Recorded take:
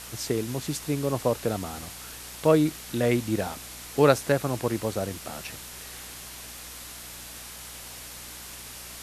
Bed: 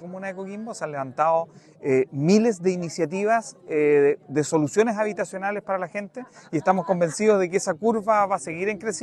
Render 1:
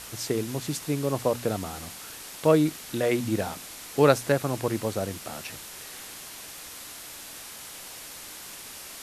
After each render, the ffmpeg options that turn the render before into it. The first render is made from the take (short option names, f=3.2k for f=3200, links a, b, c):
-af "bandreject=f=60:t=h:w=4,bandreject=f=120:t=h:w=4,bandreject=f=180:t=h:w=4,bandreject=f=240:t=h:w=4"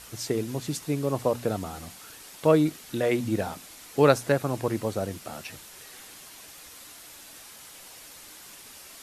-af "afftdn=nr=6:nf=-42"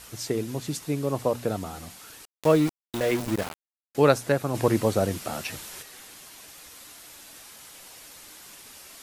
-filter_complex "[0:a]asettb=1/sr,asplit=3[a][b][c];[a]atrim=end=2.254[d];[b]atrim=start=2.25:end=3.95,asetpts=PTS-STARTPTS,afade=t=in:d=0.004:c=qsin,afade=t=out:st=1.696:d=0.004:c=qsin,aeval=exprs='val(0)*gte(abs(val(0)),0.0355)':c=same[e];[c]atrim=start=3.946[f];[d][e]acrossfade=d=0.004:c1=hsin:c2=qsin[g];[g][f]acrossfade=d=0.004:c1=qsin:c2=hsin,asplit=3[h][i][j];[h]afade=t=out:st=4.54:d=0.02[k];[i]acontrast=54,afade=t=in:st=4.54:d=0.02,afade=t=out:st=5.81:d=0.02[l];[j]afade=t=in:st=5.81:d=0.02[m];[k][l][m]amix=inputs=3:normalize=0"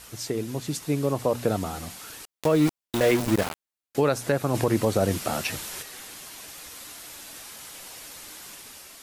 -af "alimiter=limit=-15.5dB:level=0:latency=1:release=153,dynaudnorm=f=650:g=3:m=4.5dB"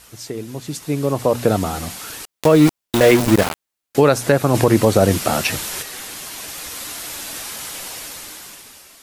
-af "dynaudnorm=f=170:g=13:m=12dB"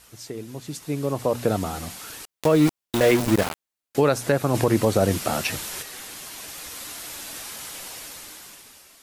-af "volume=-6dB"